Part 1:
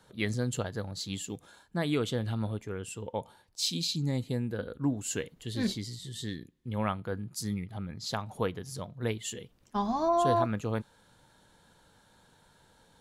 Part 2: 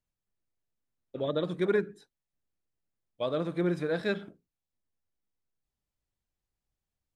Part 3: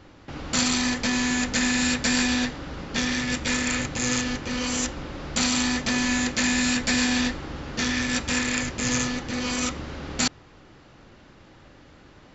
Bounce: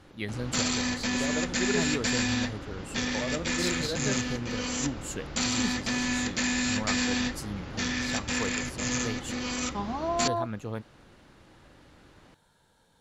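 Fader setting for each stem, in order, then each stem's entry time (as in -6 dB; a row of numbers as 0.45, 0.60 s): -3.5, -4.5, -5.0 dB; 0.00, 0.00, 0.00 s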